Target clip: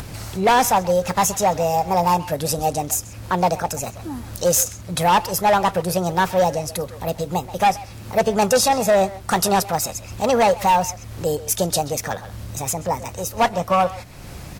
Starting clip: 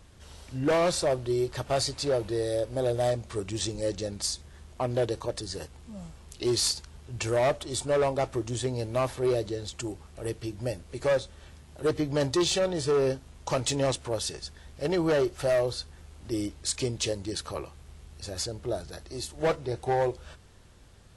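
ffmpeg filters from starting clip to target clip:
-filter_complex "[0:a]asplit=2[a][b];[b]adelay=190,highpass=300,lowpass=3.4k,asoftclip=type=hard:threshold=-28dB,volume=-13dB[c];[a][c]amix=inputs=2:normalize=0,asetrate=63945,aresample=44100,acompressor=mode=upward:threshold=-33dB:ratio=2.5,volume=9dB"

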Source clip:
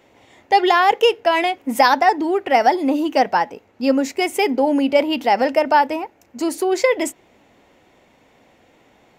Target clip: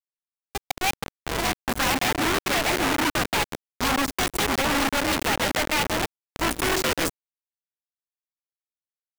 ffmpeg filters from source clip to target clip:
-filter_complex "[0:a]acompressor=threshold=-51dB:ratio=1.5,asoftclip=type=tanh:threshold=-34.5dB,asplit=3[a][b][c];[a]afade=t=out:st=0.53:d=0.02[d];[b]equalizer=f=315:t=o:w=0.33:g=4,equalizer=f=800:t=o:w=0.33:g=8,equalizer=f=1.6k:t=o:w=0.33:g=10,equalizer=f=2.5k:t=o:w=0.33:g=-9,equalizer=f=5k:t=o:w=0.33:g=7,afade=t=in:st=0.53:d=0.02,afade=t=out:st=0.96:d=0.02[e];[c]afade=t=in:st=0.96:d=0.02[f];[d][e][f]amix=inputs=3:normalize=0,asplit=2[g][h];[h]adelay=133,lowpass=f=1.1k:p=1,volume=-9.5dB,asplit=2[i][j];[j]adelay=133,lowpass=f=1.1k:p=1,volume=0.46,asplit=2[k][l];[l]adelay=133,lowpass=f=1.1k:p=1,volume=0.46,asplit=2[m][n];[n]adelay=133,lowpass=f=1.1k:p=1,volume=0.46,asplit=2[o][p];[p]adelay=133,lowpass=f=1.1k:p=1,volume=0.46[q];[g][i][k][m][o][q]amix=inputs=6:normalize=0,aeval=exprs='val(0)+0.002*(sin(2*PI*50*n/s)+sin(2*PI*2*50*n/s)/2+sin(2*PI*3*50*n/s)/3+sin(2*PI*4*50*n/s)/4+sin(2*PI*5*50*n/s)/5)':c=same,dynaudnorm=f=250:g=9:m=12.5dB,acrusher=bits=3:mix=0:aa=0.000001,lowshelf=f=230:g=-8,aeval=exprs='0.211*sin(PI/2*8.91*val(0)/0.211)':c=same,volume=-5.5dB"

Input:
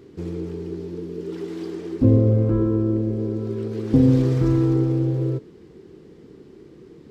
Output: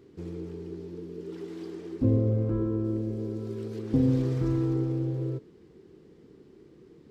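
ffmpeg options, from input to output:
-filter_complex "[0:a]asettb=1/sr,asplit=3[a][b][c];[a]atrim=end=2.844[d];[b]atrim=start=2.84:end=3.79,asetpts=PTS-STARTPTS,afade=t=in:d=0.004:c=qsin,afade=t=out:st=0.946:d=0.004:c=qsin,highshelf=f=4k:g=8[e];[c]atrim=start=3.786[f];[d][e]acrossfade=d=0.004:c1=hsin:c2=qsin[g];[g][f]acrossfade=d=0.004:c1=qsin:c2=hsin,volume=-8dB"

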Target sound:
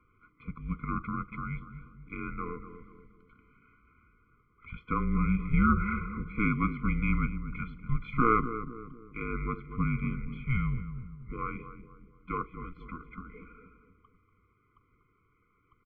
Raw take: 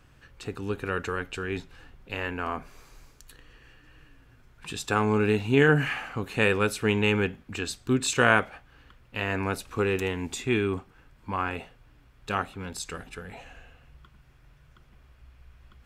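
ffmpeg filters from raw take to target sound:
-filter_complex "[0:a]asplit=2[a][b];[b]adelay=240,lowpass=f=970:p=1,volume=-8.5dB,asplit=2[c][d];[d]adelay=240,lowpass=f=970:p=1,volume=0.53,asplit=2[e][f];[f]adelay=240,lowpass=f=970:p=1,volume=0.53,asplit=2[g][h];[h]adelay=240,lowpass=f=970:p=1,volume=0.53,asplit=2[i][j];[j]adelay=240,lowpass=f=970:p=1,volume=0.53,asplit=2[k][l];[l]adelay=240,lowpass=f=970:p=1,volume=0.53[m];[a][c][e][g][i][k][m]amix=inputs=7:normalize=0,highpass=f=180:t=q:w=0.5412,highpass=f=180:t=q:w=1.307,lowpass=f=2.5k:t=q:w=0.5176,lowpass=f=2.5k:t=q:w=0.7071,lowpass=f=2.5k:t=q:w=1.932,afreqshift=-240,afftfilt=real='re*eq(mod(floor(b*sr/1024/500),2),0)':imag='im*eq(mod(floor(b*sr/1024/500),2),0)':win_size=1024:overlap=0.75,volume=-2.5dB"

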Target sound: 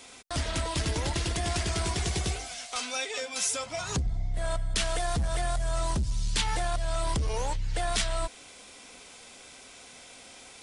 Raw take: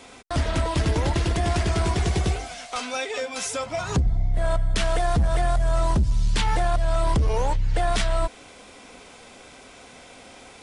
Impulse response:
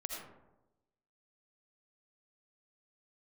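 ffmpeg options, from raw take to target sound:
-af "highshelf=f=2.6k:g=11.5,volume=-8dB"

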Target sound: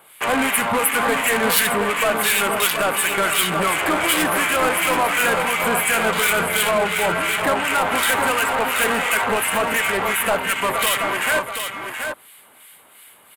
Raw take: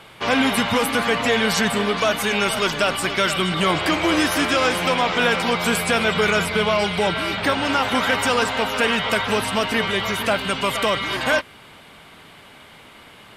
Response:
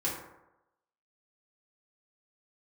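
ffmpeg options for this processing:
-filter_complex "[0:a]acrossover=split=1500[a][b];[a]aeval=exprs='val(0)*(1-0.7/2+0.7/2*cos(2*PI*2.8*n/s))':c=same[c];[b]aeval=exprs='val(0)*(1-0.7/2-0.7/2*cos(2*PI*2.8*n/s))':c=same[d];[c][d]amix=inputs=2:normalize=0,asplit=2[e][f];[f]acompressor=threshold=-35dB:ratio=12,volume=-1.5dB[g];[e][g]amix=inputs=2:normalize=0,afwtdn=0.0447,asplit=2[h][i];[i]highpass=f=720:p=1,volume=18dB,asoftclip=type=tanh:threshold=-8dB[j];[h][j]amix=inputs=2:normalize=0,lowpass=f=5.9k:p=1,volume=-6dB,aexciter=amount=14.6:drive=5.8:freq=8.2k,asplit=2[k][l];[l]aecho=0:1:68|729:0.1|0.447[m];[k][m]amix=inputs=2:normalize=0,volume=-3.5dB"

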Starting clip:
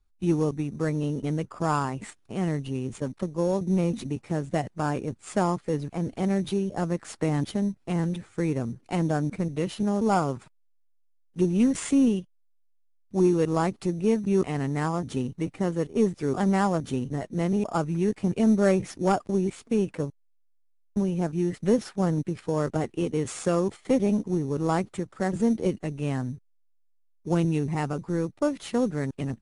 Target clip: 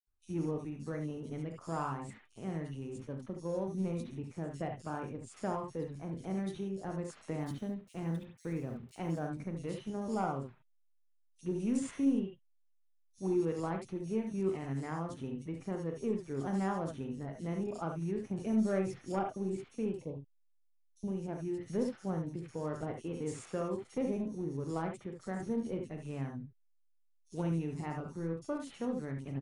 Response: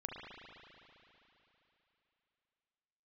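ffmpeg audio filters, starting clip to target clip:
-filter_complex "[0:a]asettb=1/sr,asplit=3[a][b][c];[a]atrim=end=7.394[d];[b]atrim=start=7.39:end=9.27,asetpts=PTS-STARTPTS,afade=t=in:d=0.004:c=qsin,afade=t=out:st=1.876:d=0.004:c=qsin,aeval=exprs='val(0)*gte(abs(val(0)),0.00596)':c=same[e];[c]atrim=start=9.266[f];[d][e]acrossfade=d=0.004:c1=hsin:c2=qsin[g];[g][f]acrossfade=d=0.004:c1=qsin:c2=hsin,asettb=1/sr,asplit=3[h][i][j];[h]atrim=end=19.924[k];[i]atrim=start=19.92:end=21.01,asetpts=PTS-STARTPTS,afade=t=in:d=0.004:c=qsin,afade=t=out:st=1.086:d=0.004:c=qsin,asuperstop=centerf=1500:order=4:qfactor=0.83[l];[j]atrim=start=21.006[m];[k][l]acrossfade=d=0.004:c1=hsin:c2=qsin[n];[n][m]acrossfade=d=0.004:c1=qsin:c2=hsin,acrossover=split=3500[o][p];[o]adelay=70[q];[q][p]amix=inputs=2:normalize=0[r];[1:a]atrim=start_sample=2205,atrim=end_sample=4410[s];[r][s]afir=irnorm=-1:irlink=0,volume=-8dB"

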